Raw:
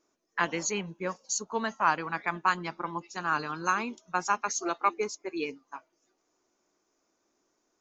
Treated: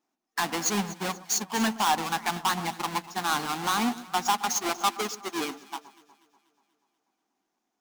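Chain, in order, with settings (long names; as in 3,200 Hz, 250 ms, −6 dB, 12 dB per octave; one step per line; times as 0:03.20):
each half-wave held at its own peak
high-shelf EQ 6,100 Hz −6.5 dB
in parallel at +0.5 dB: brickwall limiter −20 dBFS, peak gain reduction 9 dB
on the sum: soft clipping −19.5 dBFS, distortion −9 dB
tilt shelving filter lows −8.5 dB
hollow resonant body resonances 220/760 Hz, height 15 dB, ringing for 25 ms
on a send: delay that swaps between a low-pass and a high-pass 121 ms, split 1,400 Hz, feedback 76%, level −11 dB
on the sum: expander for the loud parts 1.5 to 1, over −46 dBFS
level −5.5 dB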